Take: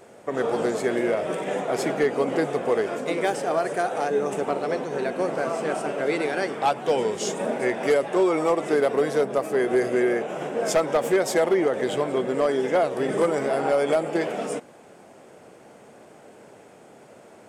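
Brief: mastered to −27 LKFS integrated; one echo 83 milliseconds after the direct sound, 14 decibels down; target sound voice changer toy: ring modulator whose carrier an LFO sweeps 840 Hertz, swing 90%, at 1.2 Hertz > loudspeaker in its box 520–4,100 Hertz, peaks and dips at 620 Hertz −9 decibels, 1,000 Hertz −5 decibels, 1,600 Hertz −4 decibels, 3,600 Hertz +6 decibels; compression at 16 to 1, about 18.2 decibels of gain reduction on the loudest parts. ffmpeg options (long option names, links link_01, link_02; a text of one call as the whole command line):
ffmpeg -i in.wav -af "acompressor=threshold=-35dB:ratio=16,aecho=1:1:83:0.2,aeval=exprs='val(0)*sin(2*PI*840*n/s+840*0.9/1.2*sin(2*PI*1.2*n/s))':channel_layout=same,highpass=520,equalizer=frequency=620:width_type=q:width=4:gain=-9,equalizer=frequency=1000:width_type=q:width=4:gain=-5,equalizer=frequency=1600:width_type=q:width=4:gain=-4,equalizer=frequency=3600:width_type=q:width=4:gain=6,lowpass=frequency=4100:width=0.5412,lowpass=frequency=4100:width=1.3066,volume=18dB" out.wav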